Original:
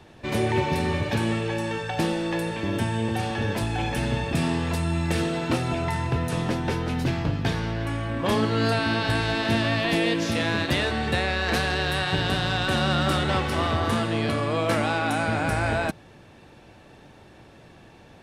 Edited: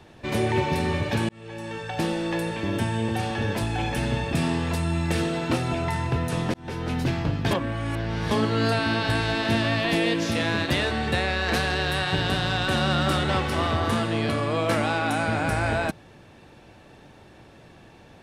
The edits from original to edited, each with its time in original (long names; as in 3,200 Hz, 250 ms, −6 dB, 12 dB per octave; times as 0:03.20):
0:01.29–0:02.43: fade in equal-power
0:06.54–0:06.91: fade in
0:07.51–0:08.31: reverse